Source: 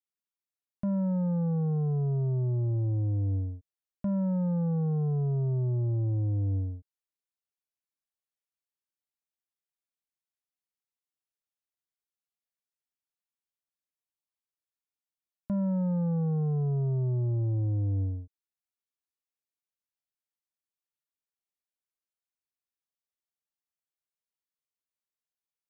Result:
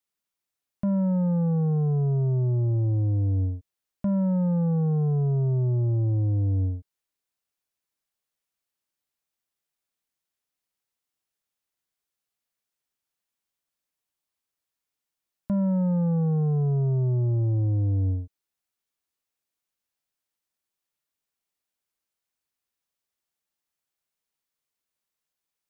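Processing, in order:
brickwall limiter −29 dBFS, peak gain reduction 3 dB
level +7.5 dB

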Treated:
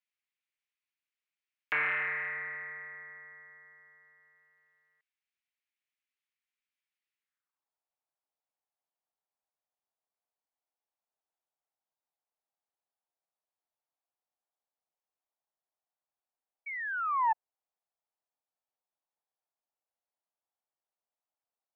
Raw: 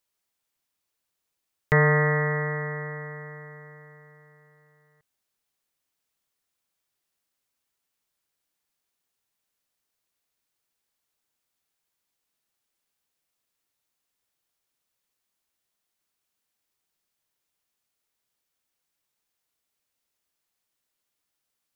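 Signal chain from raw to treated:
sound drawn into the spectrogram fall, 0:16.66–0:17.33, 860–2,300 Hz −20 dBFS
band-pass filter sweep 2,300 Hz → 750 Hz, 0:07.20–0:07.71
highs frequency-modulated by the lows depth 0.31 ms
level −2.5 dB

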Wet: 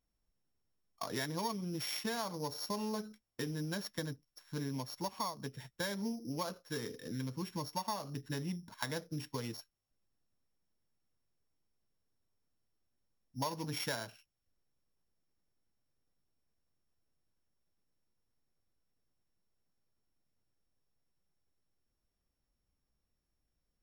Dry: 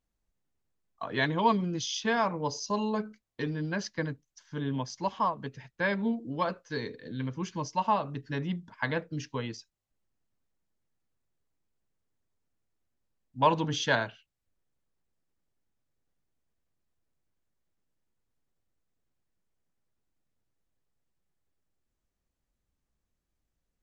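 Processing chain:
samples sorted by size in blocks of 8 samples
downward compressor 5 to 1, threshold −34 dBFS, peak gain reduction 15 dB
level −1.5 dB

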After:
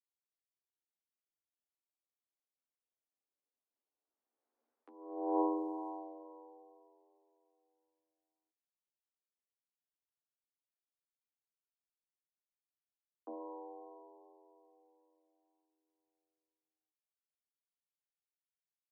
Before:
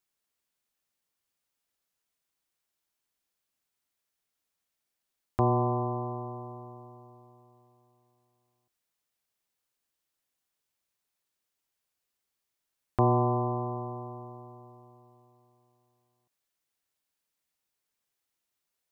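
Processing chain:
source passing by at 0:04.66, 36 m/s, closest 8.6 metres
low-pass that shuts in the quiet parts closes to 790 Hz, open at −46 dBFS
compressor whose output falls as the input rises −40 dBFS, ratio −0.5
pitch shifter −4 semitones
flanger 0.14 Hz, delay 6 ms, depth 9.8 ms, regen +21%
frequency shifter +230 Hz
level +6 dB

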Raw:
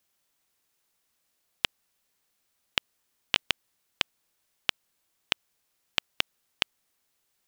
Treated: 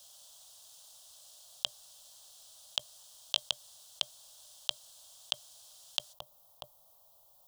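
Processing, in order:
drawn EQ curve 130 Hz 0 dB, 340 Hz −23 dB, 600 Hz +9 dB, 1,100 Hz +1 dB, 2,200 Hz −23 dB, 3,200 Hz +3 dB
compressor whose output falls as the input rises −37 dBFS, ratio −1
flat-topped bell 3,800 Hz +8 dB 3 octaves, from 0:06.12 −9 dB

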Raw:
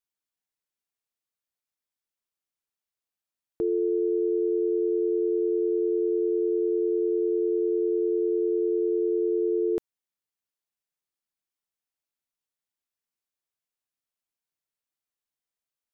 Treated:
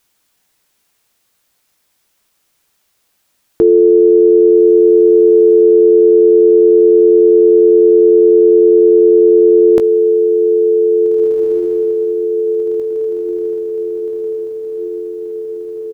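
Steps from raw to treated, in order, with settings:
0:04.53–0:05.61: ceiling on every frequency bin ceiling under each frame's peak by 14 dB
double-tracking delay 18 ms −12.5 dB
feedback delay with all-pass diffusion 1,736 ms, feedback 62%, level −15.5 dB
boost into a limiter +29 dB
level −1 dB

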